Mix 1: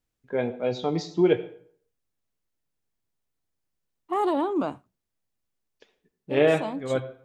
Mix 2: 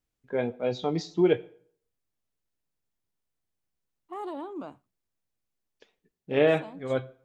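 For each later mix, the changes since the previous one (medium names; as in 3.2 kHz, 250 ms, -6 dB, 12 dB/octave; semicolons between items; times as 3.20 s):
first voice: send -9.5 dB; second voice -12.0 dB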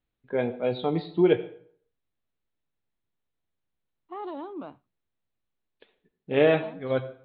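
first voice: send +9.5 dB; master: add steep low-pass 4.2 kHz 96 dB/octave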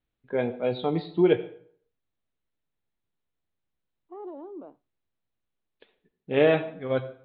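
second voice: add band-pass filter 440 Hz, Q 1.7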